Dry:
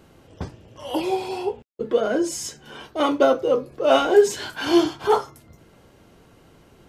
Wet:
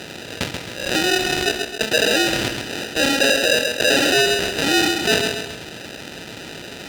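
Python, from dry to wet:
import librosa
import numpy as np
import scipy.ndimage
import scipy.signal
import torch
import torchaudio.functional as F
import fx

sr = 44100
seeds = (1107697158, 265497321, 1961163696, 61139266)

p1 = fx.low_shelf(x, sr, hz=410.0, db=-2.0)
p2 = fx.schmitt(p1, sr, flips_db=-24.5)
p3 = p1 + F.gain(torch.from_numpy(p2), -4.5).numpy()
p4 = fx.sample_hold(p3, sr, seeds[0], rate_hz=1100.0, jitter_pct=0)
p5 = p4 + fx.echo_feedback(p4, sr, ms=133, feedback_pct=24, wet_db=-11, dry=0)
p6 = fx.fold_sine(p5, sr, drive_db=5, ceiling_db=-4.0)
p7 = fx.weighting(p6, sr, curve='D')
p8 = fx.env_flatten(p7, sr, amount_pct=50)
y = F.gain(torch.from_numpy(p8), -11.0).numpy()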